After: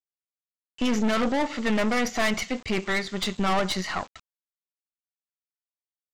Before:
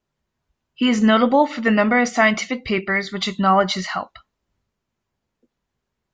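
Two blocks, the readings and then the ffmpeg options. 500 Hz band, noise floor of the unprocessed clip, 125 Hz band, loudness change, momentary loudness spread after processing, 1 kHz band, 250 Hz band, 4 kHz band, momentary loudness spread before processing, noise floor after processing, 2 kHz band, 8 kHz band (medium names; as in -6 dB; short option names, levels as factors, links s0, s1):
-8.0 dB, -80 dBFS, -6.0 dB, -7.5 dB, 6 LU, -9.5 dB, -7.5 dB, -5.0 dB, 9 LU, under -85 dBFS, -8.0 dB, no reading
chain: -af "aresample=16000,acrusher=bits=6:mix=0:aa=0.000001,aresample=44100,aeval=exprs='(tanh(11.2*val(0)+0.75)-tanh(0.75))/11.2':c=same"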